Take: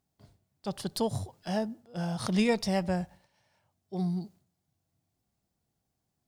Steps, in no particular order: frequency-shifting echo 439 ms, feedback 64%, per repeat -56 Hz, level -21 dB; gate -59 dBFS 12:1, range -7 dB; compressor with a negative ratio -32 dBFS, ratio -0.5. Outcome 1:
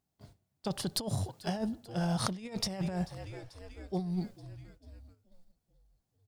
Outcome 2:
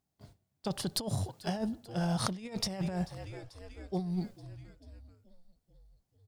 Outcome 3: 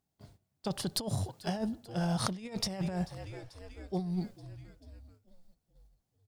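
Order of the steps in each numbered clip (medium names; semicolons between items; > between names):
frequency-shifting echo > gate > compressor with a negative ratio; gate > frequency-shifting echo > compressor with a negative ratio; frequency-shifting echo > compressor with a negative ratio > gate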